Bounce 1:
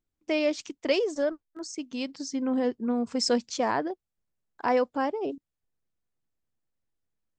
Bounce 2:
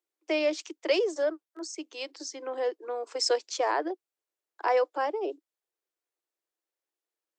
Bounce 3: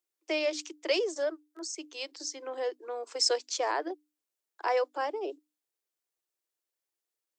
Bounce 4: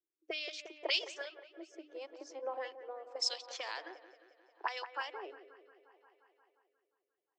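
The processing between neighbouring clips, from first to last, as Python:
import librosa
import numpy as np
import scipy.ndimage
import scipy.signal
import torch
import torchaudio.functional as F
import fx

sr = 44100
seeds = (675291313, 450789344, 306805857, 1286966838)

y1 = scipy.signal.sosfilt(scipy.signal.butter(16, 310.0, 'highpass', fs=sr, output='sos'), x)
y2 = fx.high_shelf(y1, sr, hz=3400.0, db=7.5)
y2 = fx.hum_notches(y2, sr, base_hz=50, count=6)
y2 = y2 * 10.0 ** (-3.5 / 20.0)
y3 = fx.auto_wah(y2, sr, base_hz=310.0, top_hz=3600.0, q=2.5, full_db=-26.5, direction='up')
y3 = fx.echo_wet_lowpass(y3, sr, ms=177, feedback_pct=68, hz=1800.0, wet_db=-10.0)
y3 = fx.rotary(y3, sr, hz=0.75)
y3 = y3 * 10.0 ** (5.5 / 20.0)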